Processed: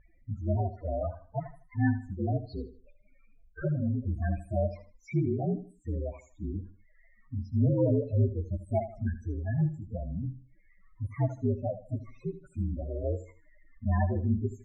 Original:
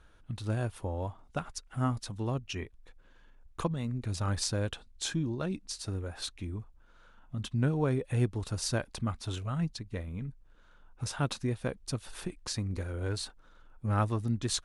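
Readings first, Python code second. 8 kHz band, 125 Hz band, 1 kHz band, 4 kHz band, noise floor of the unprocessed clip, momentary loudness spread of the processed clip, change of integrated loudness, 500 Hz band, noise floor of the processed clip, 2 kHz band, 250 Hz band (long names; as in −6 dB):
below −25 dB, +3.0 dB, −1.0 dB, below −25 dB, −59 dBFS, 12 LU, +2.5 dB, +4.0 dB, −62 dBFS, −3.5 dB, +2.5 dB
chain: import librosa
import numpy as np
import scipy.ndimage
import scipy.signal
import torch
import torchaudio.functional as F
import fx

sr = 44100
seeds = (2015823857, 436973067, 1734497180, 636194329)

p1 = fx.partial_stretch(x, sr, pct=119)
p2 = fx.dynamic_eq(p1, sr, hz=660.0, q=6.0, threshold_db=-58.0, ratio=4.0, max_db=6)
p3 = 10.0 ** (-33.0 / 20.0) * np.tanh(p2 / 10.0 ** (-33.0 / 20.0))
p4 = p2 + F.gain(torch.from_numpy(p3), -6.5).numpy()
p5 = fx.low_shelf(p4, sr, hz=100.0, db=-7.0)
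p6 = fx.spec_topn(p5, sr, count=8)
p7 = scipy.signal.sosfilt(scipy.signal.butter(2, 1900.0, 'lowpass', fs=sr, output='sos'), p6)
p8 = p7 + fx.echo_feedback(p7, sr, ms=78, feedback_pct=30, wet_db=-13.0, dry=0)
y = F.gain(torch.from_numpy(p8), 5.0).numpy()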